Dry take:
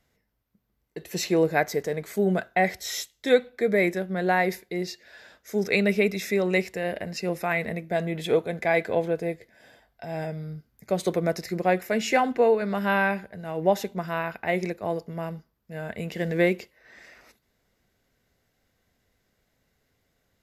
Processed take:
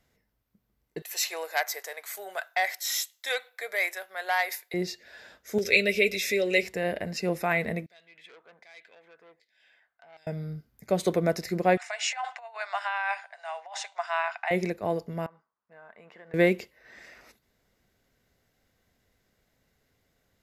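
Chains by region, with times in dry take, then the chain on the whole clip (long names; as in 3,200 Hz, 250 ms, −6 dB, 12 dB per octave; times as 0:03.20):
0:01.02–0:04.74: high-pass filter 740 Hz 24 dB per octave + high-shelf EQ 9,800 Hz +11 dB + saturating transformer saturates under 2,400 Hz
0:05.58–0:06.63: drawn EQ curve 110 Hz 0 dB, 180 Hz −11 dB, 560 Hz +1 dB, 910 Hz −16 dB, 2,500 Hz +7 dB, 8,500 Hz +3 dB + upward compression, threshold −23 dBFS + notch comb filter 160 Hz
0:07.86–0:10.27: downward compressor 1.5 to 1, threshold −50 dBFS + auto-filter band-pass saw down 1.3 Hz 910–4,800 Hz + saturating transformer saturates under 2,400 Hz
0:11.77–0:14.51: compressor whose output falls as the input rises −25 dBFS, ratio −0.5 + Chebyshev band-pass filter 690–9,100 Hz, order 5
0:15.26–0:16.34: resonant band-pass 1,100 Hz, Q 2.6 + downward compressor 2.5 to 1, threshold −48 dBFS
whole clip: no processing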